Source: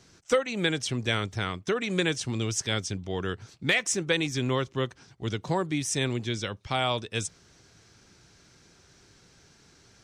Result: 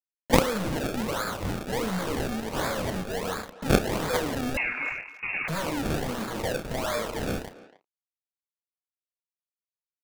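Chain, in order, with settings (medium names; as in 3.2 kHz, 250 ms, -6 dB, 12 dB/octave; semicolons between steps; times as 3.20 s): spectral sustain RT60 1.54 s; reverb removal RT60 1.4 s; companded quantiser 2-bit; static phaser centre 550 Hz, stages 8; decimation with a swept rate 30×, swing 100% 1.4 Hz; doubling 32 ms -12 dB; 4.57–5.48 s: frequency inversion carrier 2.7 kHz; speakerphone echo 280 ms, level -15 dB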